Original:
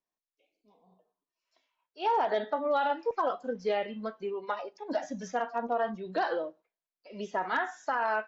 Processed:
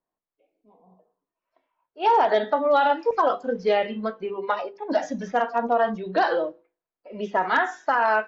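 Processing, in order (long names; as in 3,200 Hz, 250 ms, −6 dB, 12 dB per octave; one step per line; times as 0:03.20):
mains-hum notches 50/100/150/200/250/300/350/400/450/500 Hz
low-pass that shuts in the quiet parts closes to 1,200 Hz, open at −26.5 dBFS
level +8.5 dB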